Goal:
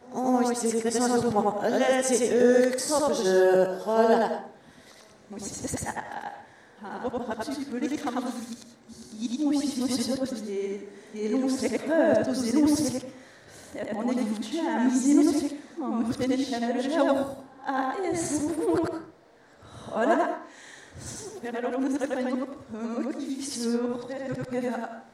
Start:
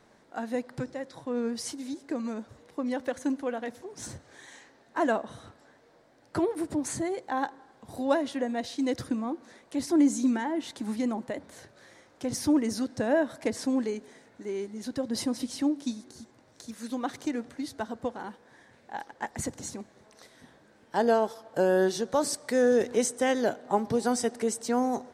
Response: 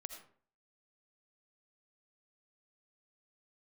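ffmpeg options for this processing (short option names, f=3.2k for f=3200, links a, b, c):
-filter_complex "[0:a]areverse,asplit=2[a][b];[1:a]atrim=start_sample=2205,adelay=94[c];[b][c]afir=irnorm=-1:irlink=0,volume=4.5dB[d];[a][d]amix=inputs=2:normalize=0"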